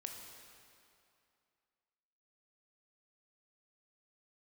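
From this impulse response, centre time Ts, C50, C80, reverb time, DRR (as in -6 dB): 74 ms, 3.5 dB, 4.5 dB, 2.5 s, 2.0 dB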